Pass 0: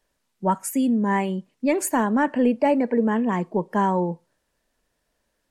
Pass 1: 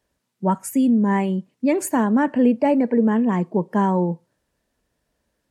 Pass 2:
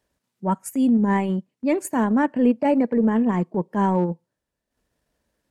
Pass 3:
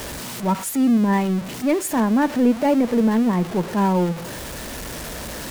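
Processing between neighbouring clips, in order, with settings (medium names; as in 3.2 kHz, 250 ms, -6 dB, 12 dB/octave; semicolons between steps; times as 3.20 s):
high-pass 50 Hz; bass shelf 350 Hz +8 dB; trim -1.5 dB
transient shaper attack -6 dB, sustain -10 dB
jump at every zero crossing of -25.5 dBFS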